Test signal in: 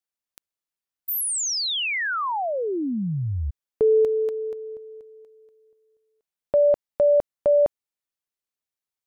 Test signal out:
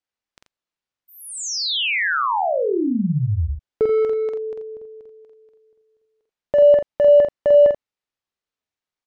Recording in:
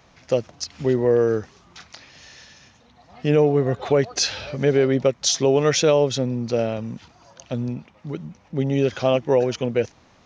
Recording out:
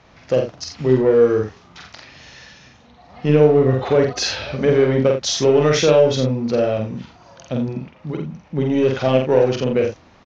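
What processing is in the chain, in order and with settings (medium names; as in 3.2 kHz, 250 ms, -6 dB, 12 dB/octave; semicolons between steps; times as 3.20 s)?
in parallel at -5.5 dB: hard clipper -21.5 dBFS; on the sum: distance through air 100 m; loudspeakers at several distances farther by 16 m -3 dB, 29 m -9 dB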